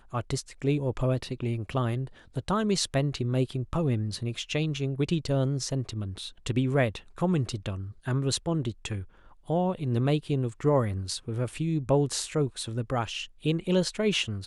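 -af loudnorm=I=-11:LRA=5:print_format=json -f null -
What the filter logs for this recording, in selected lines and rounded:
"input_i" : "-28.9",
"input_tp" : "-12.7",
"input_lra" : "1.6",
"input_thresh" : "-39.0",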